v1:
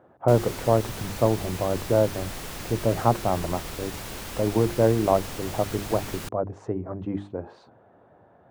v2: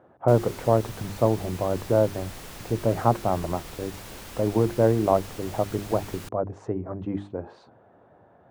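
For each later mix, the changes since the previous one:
background −5.0 dB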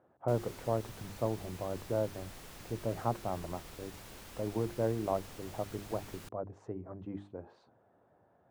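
speech −12.0 dB
background −9.0 dB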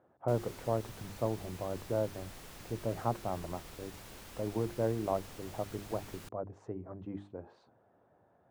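nothing changed

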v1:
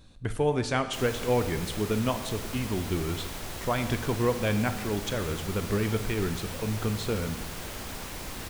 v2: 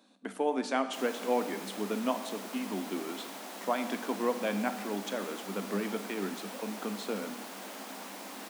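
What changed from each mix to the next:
master: add Chebyshev high-pass with heavy ripple 190 Hz, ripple 6 dB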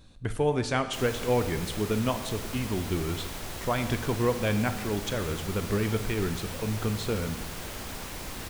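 master: remove Chebyshev high-pass with heavy ripple 190 Hz, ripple 6 dB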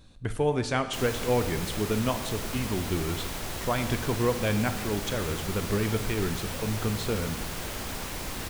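background +3.0 dB

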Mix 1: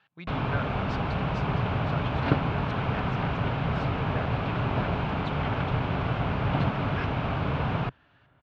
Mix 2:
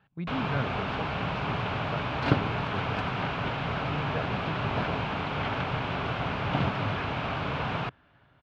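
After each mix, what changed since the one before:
speech: add spectral tilt −4 dB per octave
first sound: add spectral tilt +2 dB per octave
second sound: remove high-frequency loss of the air 180 metres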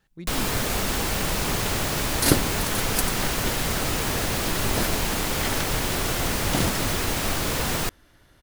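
speech −7.5 dB
master: remove loudspeaker in its box 110–2,700 Hz, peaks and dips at 130 Hz +3 dB, 220 Hz −6 dB, 340 Hz −10 dB, 500 Hz −6 dB, 1,900 Hz −9 dB

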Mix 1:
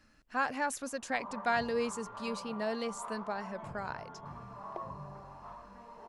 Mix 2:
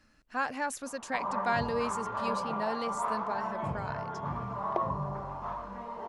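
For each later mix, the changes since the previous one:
background +11.0 dB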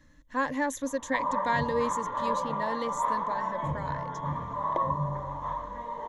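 speech: add low-shelf EQ 230 Hz +9.5 dB
master: add EQ curve with evenly spaced ripples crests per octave 1.1, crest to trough 13 dB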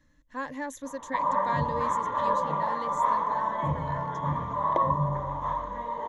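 speech −6.0 dB
background +3.5 dB

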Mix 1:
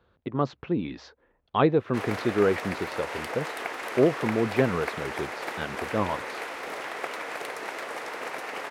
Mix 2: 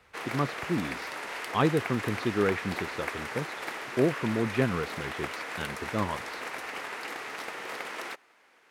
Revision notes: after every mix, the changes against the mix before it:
background: entry −1.80 s
master: add parametric band 560 Hz −6 dB 1.6 octaves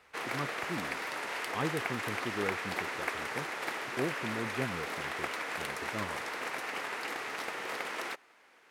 speech −9.5 dB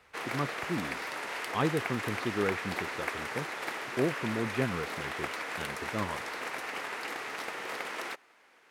speech +5.0 dB

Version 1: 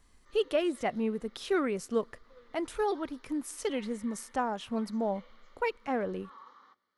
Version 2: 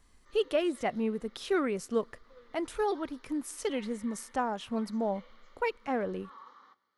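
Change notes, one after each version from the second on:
background: send +8.5 dB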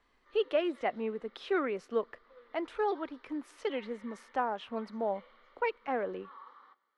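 master: add three-way crossover with the lows and the highs turned down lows −14 dB, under 290 Hz, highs −23 dB, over 3,900 Hz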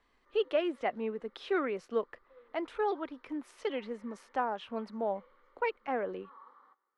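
speech: send off
background: add parametric band 3,400 Hz −13 dB 1.9 octaves

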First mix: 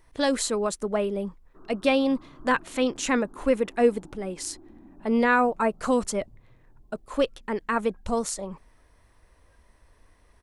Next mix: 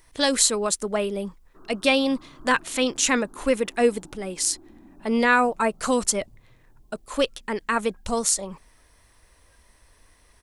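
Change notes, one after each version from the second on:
master: add high-shelf EQ 2,400 Hz +11.5 dB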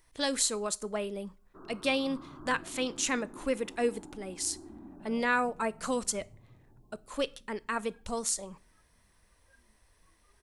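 speech −11.5 dB
reverb: on, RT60 0.40 s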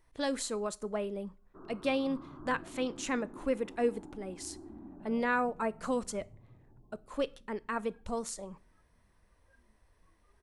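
master: add high-shelf EQ 2,400 Hz −11.5 dB

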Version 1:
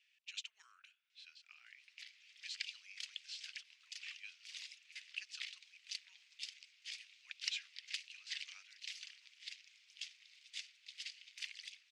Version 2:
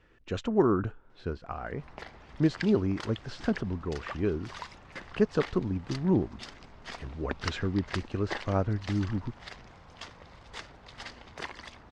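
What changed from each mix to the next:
master: remove Chebyshev high-pass filter 2,400 Hz, order 4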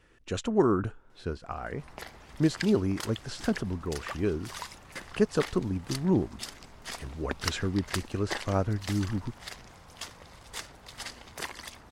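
master: remove high-frequency loss of the air 140 metres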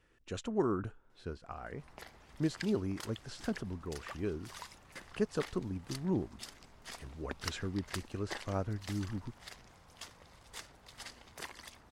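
speech −8.0 dB
background −8.0 dB

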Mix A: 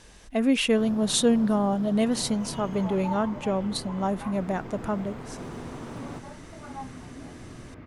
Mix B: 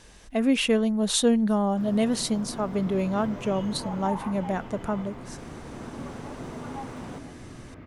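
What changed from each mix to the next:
first sound: entry +1.00 s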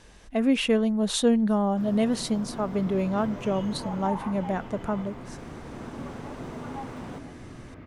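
speech: add high-shelf EQ 4,200 Hz −6 dB

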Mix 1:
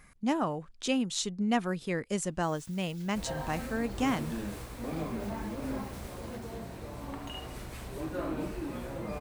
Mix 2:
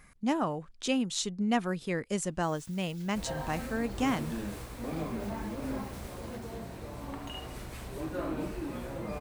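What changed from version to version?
nothing changed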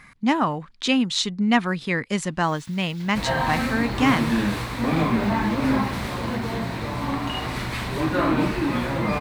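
second sound +6.5 dB
master: add graphic EQ with 10 bands 125 Hz +8 dB, 250 Hz +7 dB, 1,000 Hz +9 dB, 2,000 Hz +10 dB, 4,000 Hz +10 dB

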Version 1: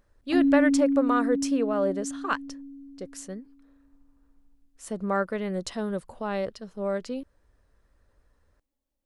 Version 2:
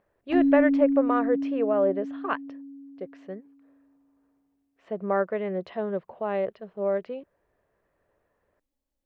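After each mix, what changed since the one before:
speech: add loudspeaker in its box 160–2,700 Hz, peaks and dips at 260 Hz −9 dB, 390 Hz +4 dB, 660 Hz +6 dB, 1,400 Hz −4 dB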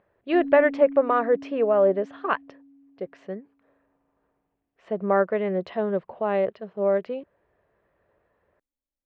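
speech +4.0 dB
background −11.0 dB

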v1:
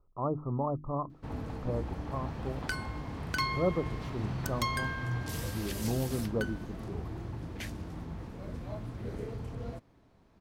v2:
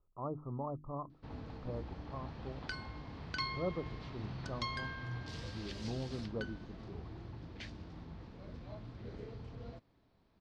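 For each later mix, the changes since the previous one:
master: add transistor ladder low-pass 5,400 Hz, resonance 40%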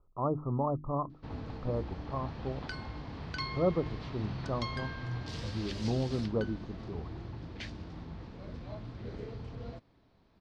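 speech +9.0 dB
first sound +5.0 dB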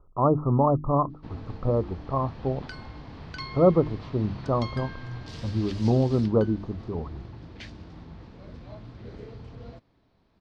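speech +10.0 dB

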